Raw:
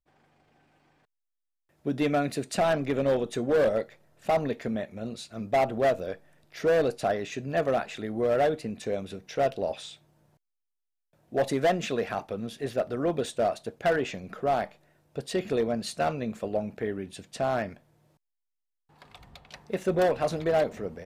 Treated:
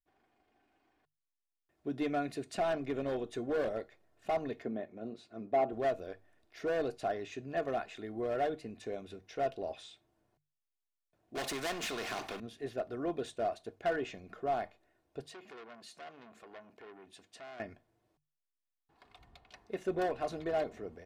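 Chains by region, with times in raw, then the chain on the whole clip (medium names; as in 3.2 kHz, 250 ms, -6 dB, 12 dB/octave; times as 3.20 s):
4.62–5.73 s: high-pass 270 Hz + tilt EQ -3.5 dB/octave
11.35–12.40 s: high-pass 170 Hz + power-law waveshaper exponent 0.7 + spectrum-flattening compressor 2:1
15.26–17.60 s: high-pass 300 Hz 6 dB/octave + compression 2:1, threshold -40 dBFS + transformer saturation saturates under 2.1 kHz
whole clip: treble shelf 7.6 kHz -8 dB; hum notches 50/100/150 Hz; comb 2.8 ms, depth 39%; trim -9 dB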